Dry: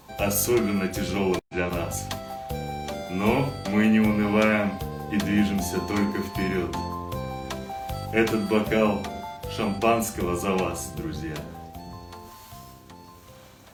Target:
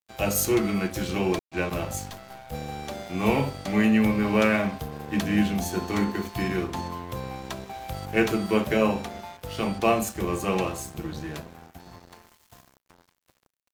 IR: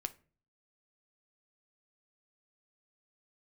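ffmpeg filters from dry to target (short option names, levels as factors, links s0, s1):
-filter_complex "[0:a]aeval=exprs='sgn(val(0))*max(abs(val(0))-0.00891,0)':c=same,asplit=3[s0][s1][s2];[s0]afade=t=out:st=2.09:d=0.02[s3];[s1]aeval=exprs='(tanh(56.2*val(0)+0.65)-tanh(0.65))/56.2':c=same,afade=t=in:st=2.09:d=0.02,afade=t=out:st=2.51:d=0.02[s4];[s2]afade=t=in:st=2.51:d=0.02[s5];[s3][s4][s5]amix=inputs=3:normalize=0"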